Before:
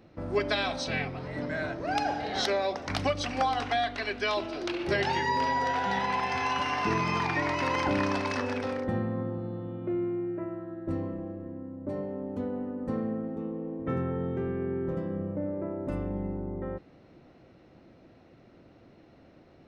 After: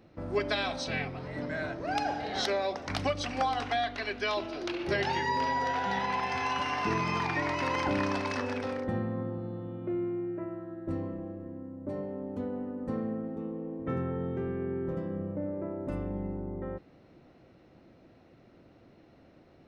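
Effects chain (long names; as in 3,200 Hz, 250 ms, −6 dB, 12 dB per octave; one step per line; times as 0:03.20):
0:03.75–0:06.27: notch filter 7,900 Hz, Q 8.3
level −2 dB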